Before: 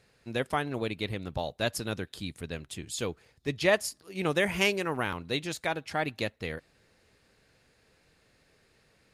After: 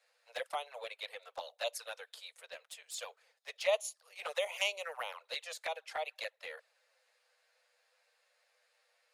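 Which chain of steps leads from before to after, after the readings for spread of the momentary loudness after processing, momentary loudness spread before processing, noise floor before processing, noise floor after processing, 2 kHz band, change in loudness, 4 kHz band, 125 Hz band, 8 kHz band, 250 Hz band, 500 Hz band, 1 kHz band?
16 LU, 13 LU, −67 dBFS, −77 dBFS, −9.0 dB, −8.0 dB, −5.5 dB, below −40 dB, −6.0 dB, below −35 dB, −8.0 dB, −7.5 dB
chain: Butterworth high-pass 490 Hz 96 dB per octave
flanger swept by the level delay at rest 10.7 ms, full sweep at −27.5 dBFS
level −3.5 dB

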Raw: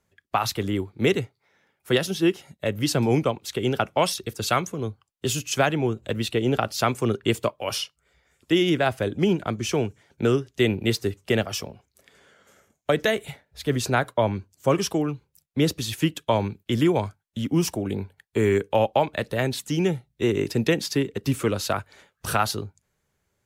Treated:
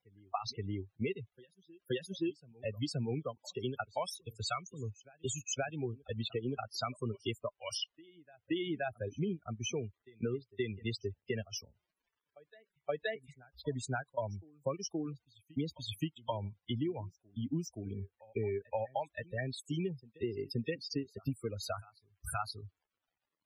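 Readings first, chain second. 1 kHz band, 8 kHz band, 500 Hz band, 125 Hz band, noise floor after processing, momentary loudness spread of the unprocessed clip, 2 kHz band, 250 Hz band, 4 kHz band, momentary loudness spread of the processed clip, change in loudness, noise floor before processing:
−15.0 dB, −12.5 dB, −15.0 dB, −13.0 dB, below −85 dBFS, 8 LU, −15.5 dB, −14.5 dB, −13.0 dB, 7 LU, −14.5 dB, −76 dBFS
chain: spectral dynamics exaggerated over time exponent 2
downward compressor 6 to 1, threshold −33 dBFS, peak gain reduction 14 dB
on a send: backwards echo 524 ms −23 dB
on the sum: surface crackle 240 per second −61 dBFS
spectral peaks only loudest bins 32

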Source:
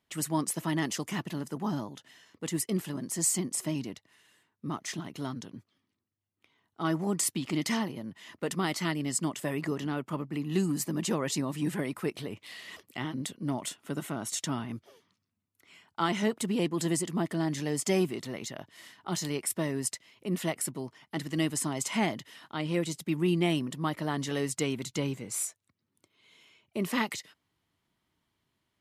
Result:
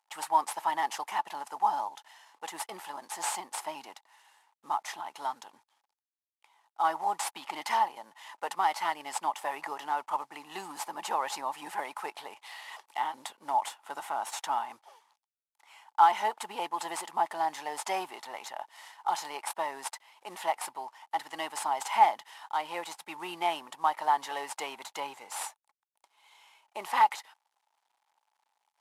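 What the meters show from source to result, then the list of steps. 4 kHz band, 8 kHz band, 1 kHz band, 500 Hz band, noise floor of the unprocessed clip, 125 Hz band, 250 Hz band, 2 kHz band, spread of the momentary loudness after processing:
−2.5 dB, −7.5 dB, +11.5 dB, −5.5 dB, −81 dBFS, below −25 dB, −19.5 dB, 0.0 dB, 15 LU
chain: variable-slope delta modulation 64 kbit/s
dynamic equaliser 6,800 Hz, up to −5 dB, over −50 dBFS, Q 0.87
high-pass with resonance 850 Hz, resonance Q 8.9
level −1.5 dB

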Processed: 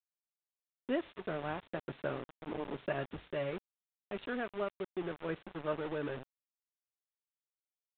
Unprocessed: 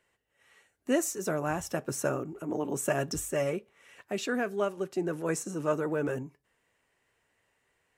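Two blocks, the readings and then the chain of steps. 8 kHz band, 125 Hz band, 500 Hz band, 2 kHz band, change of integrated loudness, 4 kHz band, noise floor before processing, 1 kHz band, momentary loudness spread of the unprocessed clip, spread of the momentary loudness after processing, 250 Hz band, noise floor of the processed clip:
below −40 dB, −8.5 dB, −7.5 dB, −6.5 dB, −8.0 dB, −7.5 dB, −76 dBFS, −6.5 dB, 6 LU, 7 LU, −8.0 dB, below −85 dBFS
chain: centre clipping without the shift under −33 dBFS
downsampling to 8,000 Hz
level −7 dB

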